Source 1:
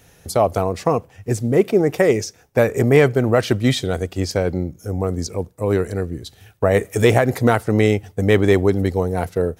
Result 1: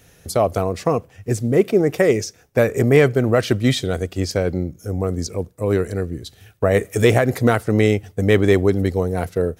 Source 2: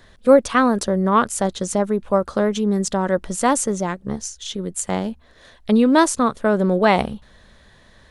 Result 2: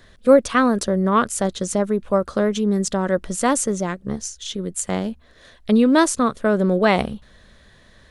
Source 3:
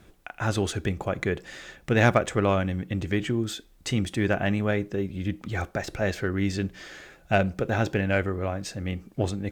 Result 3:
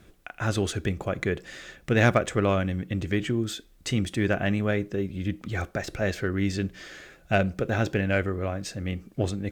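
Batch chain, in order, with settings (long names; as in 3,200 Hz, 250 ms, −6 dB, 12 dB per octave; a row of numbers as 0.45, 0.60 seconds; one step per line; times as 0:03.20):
parametric band 870 Hz −5 dB 0.46 octaves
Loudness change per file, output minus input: −0.5, −0.5, −0.5 LU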